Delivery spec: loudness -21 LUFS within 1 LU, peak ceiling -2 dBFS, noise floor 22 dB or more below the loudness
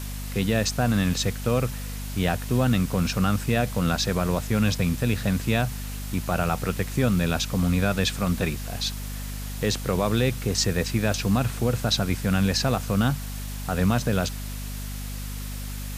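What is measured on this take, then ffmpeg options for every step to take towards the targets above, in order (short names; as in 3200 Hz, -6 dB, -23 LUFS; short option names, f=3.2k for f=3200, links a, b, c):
hum 50 Hz; harmonics up to 250 Hz; hum level -31 dBFS; noise floor -33 dBFS; noise floor target -48 dBFS; loudness -25.5 LUFS; peak -8.5 dBFS; loudness target -21.0 LUFS
-> -af "bandreject=f=50:t=h:w=6,bandreject=f=100:t=h:w=6,bandreject=f=150:t=h:w=6,bandreject=f=200:t=h:w=6,bandreject=f=250:t=h:w=6"
-af "afftdn=nr=15:nf=-33"
-af "volume=4.5dB"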